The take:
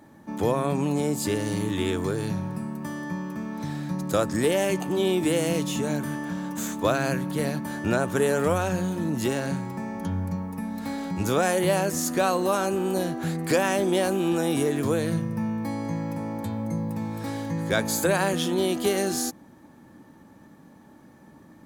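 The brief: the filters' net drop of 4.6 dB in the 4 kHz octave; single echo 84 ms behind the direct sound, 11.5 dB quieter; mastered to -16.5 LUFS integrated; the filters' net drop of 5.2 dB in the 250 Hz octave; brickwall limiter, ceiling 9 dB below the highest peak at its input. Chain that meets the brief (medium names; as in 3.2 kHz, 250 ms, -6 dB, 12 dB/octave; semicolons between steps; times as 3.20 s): peaking EQ 250 Hz -7.5 dB; peaking EQ 4 kHz -6 dB; peak limiter -21 dBFS; delay 84 ms -11.5 dB; trim +15.5 dB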